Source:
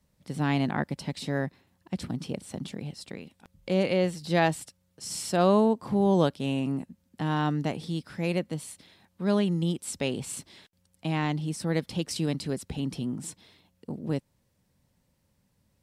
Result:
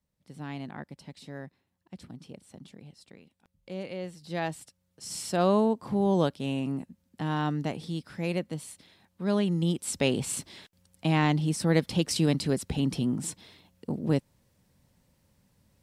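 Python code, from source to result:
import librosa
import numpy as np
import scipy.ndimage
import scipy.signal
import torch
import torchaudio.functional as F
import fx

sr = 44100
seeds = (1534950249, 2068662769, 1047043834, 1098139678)

y = fx.gain(x, sr, db=fx.line((3.97, -12.0), (5.16, -2.0), (9.31, -2.0), (10.07, 4.0)))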